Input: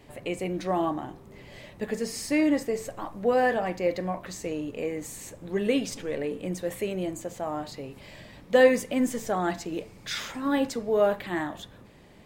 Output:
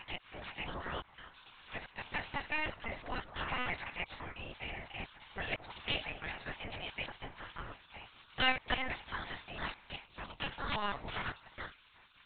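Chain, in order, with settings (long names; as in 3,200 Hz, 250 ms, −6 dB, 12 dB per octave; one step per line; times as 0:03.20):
slices reordered back to front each 168 ms, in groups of 2
gate on every frequency bin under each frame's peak −20 dB weak
linear-prediction vocoder at 8 kHz pitch kept
level +4.5 dB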